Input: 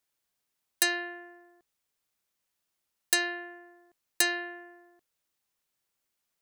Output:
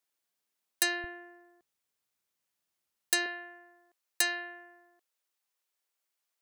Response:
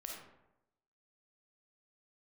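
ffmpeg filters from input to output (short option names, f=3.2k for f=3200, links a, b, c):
-af "asetnsamples=n=441:p=0,asendcmd='1.04 highpass f 65;3.26 highpass f 450',highpass=180,volume=-2.5dB"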